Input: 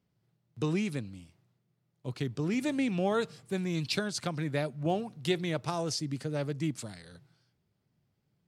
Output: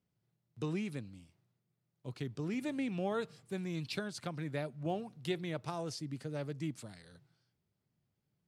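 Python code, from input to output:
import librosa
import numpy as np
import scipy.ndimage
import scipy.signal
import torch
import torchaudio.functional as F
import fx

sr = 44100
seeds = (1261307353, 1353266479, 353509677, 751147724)

y = fx.dynamic_eq(x, sr, hz=6200.0, q=0.98, threshold_db=-50.0, ratio=4.0, max_db=-5)
y = y * librosa.db_to_amplitude(-6.5)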